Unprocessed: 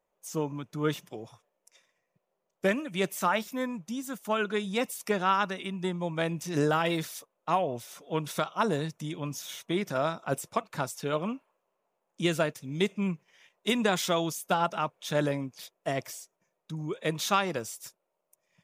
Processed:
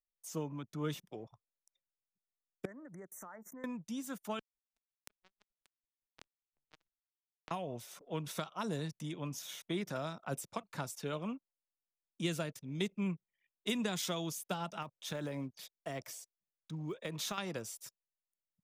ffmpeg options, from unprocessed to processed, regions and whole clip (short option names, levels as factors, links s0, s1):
-filter_complex "[0:a]asettb=1/sr,asplit=3[s0][s1][s2];[s0]atrim=end=2.654[s3];[s1]atrim=start=2.65:end=3.64,asetpts=PTS-STARTPTS,afade=t=in:d=0.004:c=qsin,afade=t=out:st=0.986:d=0.004:c=qsin,asuperstop=centerf=3500:order=20:qfactor=0.94,lowshelf=f=180:g=-4.5,acompressor=threshold=0.00891:ratio=8:attack=3.2:release=140:knee=1:detection=peak[s4];[s2]atrim=start=3.636[s5];[s3][s4]acrossfade=d=0.004:c1=hsin:c2=qsin[s6];[s6][s5]acrossfade=d=0.004:c1=qsin:c2=hsin,asettb=1/sr,asplit=3[s7][s8][s9];[s7]atrim=end=4.394[s10];[s8]atrim=start=4.39:end=7.51,asetpts=PTS-STARTPTS,afade=t=in:d=0.004:c=qsin,afade=t=out:st=3.116:d=0.004:c=qsin,acompressor=threshold=0.0224:ratio=5:attack=3.2:release=140:knee=1:detection=peak,acrusher=bits=3:mix=0:aa=0.5[s11];[s9]atrim=start=7.506[s12];[s10][s11]acrossfade=d=0.004:c1=hsin:c2=qsin[s13];[s13][s12]acrossfade=d=0.004:c1=qsin:c2=hsin,asettb=1/sr,asplit=3[s14][s15][s16];[s14]atrim=end=14.824[s17];[s15]atrim=start=14.82:end=17.38,asetpts=PTS-STARTPTS,afade=t=in:d=0.004:c=qsin,afade=t=out:st=2.556:d=0.004:c=qsin,acompressor=threshold=0.0398:ratio=12:attack=3.2:release=140:knee=1:detection=peak,acrusher=bits=9:mode=log:mix=0:aa=0.000001[s18];[s16]atrim=start=17.376[s19];[s17][s18]acrossfade=d=0.004:c1=hsin:c2=qsin[s20];[s20][s19]acrossfade=d=0.004:c1=qsin:c2=hsin,anlmdn=0.00398,acrossover=split=260|3000[s21][s22][s23];[s22]acompressor=threshold=0.0251:ratio=6[s24];[s21][s24][s23]amix=inputs=3:normalize=0,volume=0.531"